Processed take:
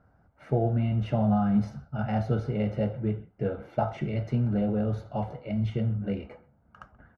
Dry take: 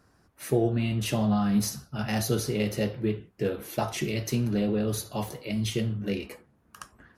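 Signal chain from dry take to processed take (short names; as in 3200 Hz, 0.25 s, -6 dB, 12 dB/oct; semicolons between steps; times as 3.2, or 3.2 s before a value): LPF 1300 Hz 12 dB/oct; comb 1.4 ms, depth 53%; speakerphone echo 0.13 s, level -22 dB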